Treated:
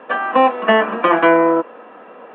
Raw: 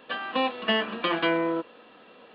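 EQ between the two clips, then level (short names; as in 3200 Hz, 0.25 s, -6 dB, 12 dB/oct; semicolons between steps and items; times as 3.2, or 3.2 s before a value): Chebyshev band-pass 180–2300 Hz, order 2; air absorption 300 m; bell 820 Hz +12.5 dB 2.9 oct; +5.0 dB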